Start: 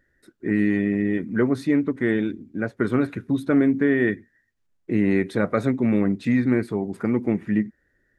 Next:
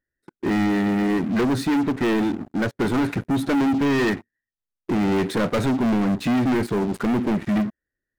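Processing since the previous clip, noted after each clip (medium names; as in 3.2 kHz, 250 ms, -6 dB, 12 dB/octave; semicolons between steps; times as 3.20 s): waveshaping leveller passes 5; trim -9 dB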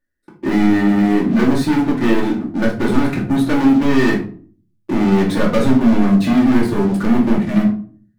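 simulated room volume 340 m³, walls furnished, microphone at 2.5 m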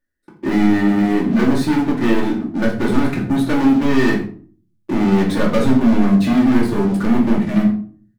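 delay 86 ms -16 dB; trim -1 dB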